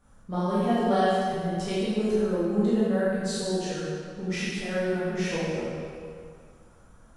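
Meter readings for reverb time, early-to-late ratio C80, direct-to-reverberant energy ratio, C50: 2.2 s, −1.0 dB, −10.5 dB, −3.5 dB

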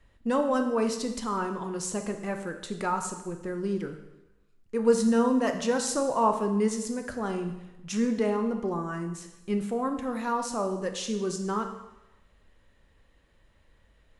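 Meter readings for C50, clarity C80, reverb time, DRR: 8.0 dB, 10.5 dB, 0.95 s, 5.5 dB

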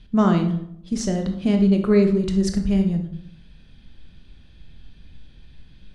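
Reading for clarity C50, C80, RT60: 8.0 dB, 12.5 dB, 0.70 s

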